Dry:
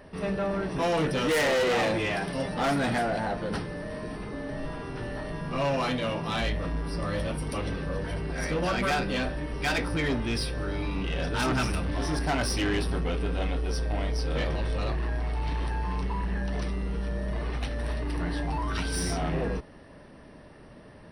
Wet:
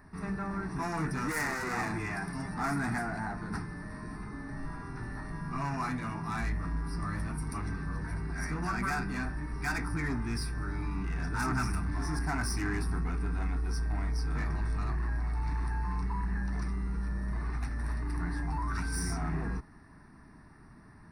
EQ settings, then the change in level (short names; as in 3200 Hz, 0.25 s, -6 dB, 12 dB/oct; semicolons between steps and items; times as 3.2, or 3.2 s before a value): dynamic EQ 3900 Hz, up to -5 dB, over -53 dBFS, Q 5.1; fixed phaser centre 1300 Hz, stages 4; -2.0 dB